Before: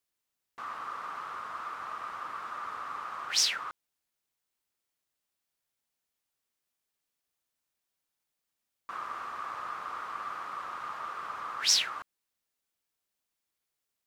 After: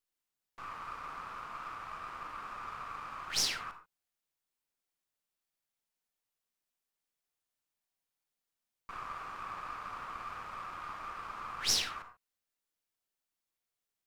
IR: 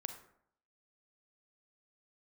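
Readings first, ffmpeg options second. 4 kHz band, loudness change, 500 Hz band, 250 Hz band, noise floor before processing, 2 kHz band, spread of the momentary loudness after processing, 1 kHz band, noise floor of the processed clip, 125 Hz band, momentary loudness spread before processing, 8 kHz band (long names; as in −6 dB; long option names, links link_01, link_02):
−5.0 dB, −5.0 dB, −2.5 dB, +2.0 dB, below −85 dBFS, −4.5 dB, 15 LU, −4.5 dB, below −85 dBFS, can't be measured, 15 LU, −5.0 dB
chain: -filter_complex "[0:a]aeval=exprs='if(lt(val(0),0),0.447*val(0),val(0))':channel_layout=same[link_01];[1:a]atrim=start_sample=2205,atrim=end_sample=6615[link_02];[link_01][link_02]afir=irnorm=-1:irlink=0"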